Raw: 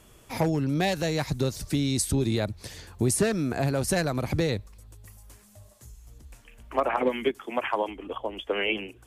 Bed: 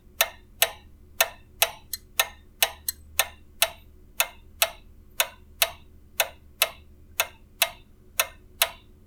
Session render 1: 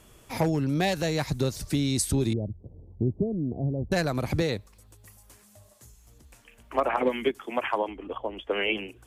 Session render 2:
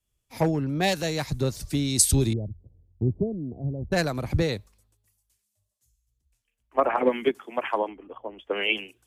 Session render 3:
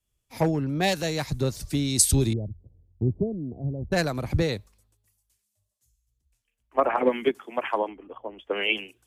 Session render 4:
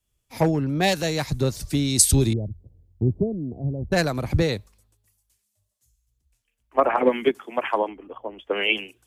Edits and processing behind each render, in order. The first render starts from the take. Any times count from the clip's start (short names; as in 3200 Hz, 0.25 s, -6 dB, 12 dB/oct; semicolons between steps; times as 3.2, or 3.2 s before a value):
2.33–3.92 Gaussian blur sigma 17 samples; 4.42–6.74 low shelf 88 Hz -11 dB; 7.78–8.51 high shelf 4300 Hz -12 dB
three-band expander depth 100%
nothing audible
gain +3 dB